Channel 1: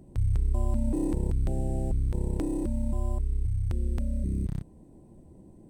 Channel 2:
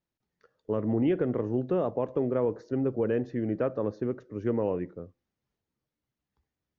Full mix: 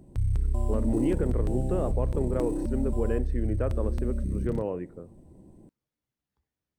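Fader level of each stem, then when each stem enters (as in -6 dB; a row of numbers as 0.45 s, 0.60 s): -0.5 dB, -2.5 dB; 0.00 s, 0.00 s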